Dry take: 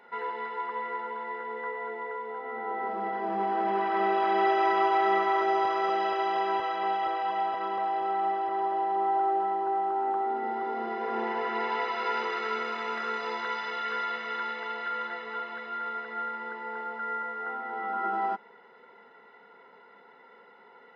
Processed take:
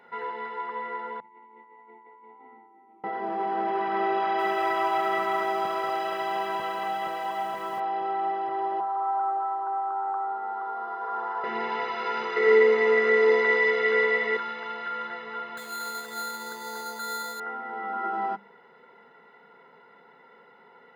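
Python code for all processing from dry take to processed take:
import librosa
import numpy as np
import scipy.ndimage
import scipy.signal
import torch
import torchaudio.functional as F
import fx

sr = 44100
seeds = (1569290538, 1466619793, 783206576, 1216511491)

y = fx.chain(x, sr, fx.vowel_filter(vowel='u'),
    fx.over_compress(threshold_db=-53.0, ratio=-1.0), at=(1.2, 3.04))
y = fx.chain(y, sr, fx.peak_eq(hz=360.0, db=-5.5, octaves=0.45),
    fx.echo_crushed(ms=188, feedback_pct=55, bits=8, wet_db=-7), at=(4.2, 7.8))
y = fx.chain(y, sr, fx.highpass(hz=750.0, slope=12),
    fx.high_shelf_res(hz=1700.0, db=-8.0, q=3.0), at=(8.8, 11.44))
y = fx.chain(y, sr, fx.small_body(hz=(430.0, 2000.0), ring_ms=35, db=17),
    fx.echo_single(ms=112, db=-4.5), at=(12.36, 14.37))
y = fx.chain(y, sr, fx.highpass(hz=110.0, slope=12),
    fx.resample_bad(factor=8, down='none', up='hold'), at=(15.57, 17.4))
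y = fx.peak_eq(y, sr, hz=150.0, db=10.5, octaves=0.61)
y = fx.hum_notches(y, sr, base_hz=50, count=4)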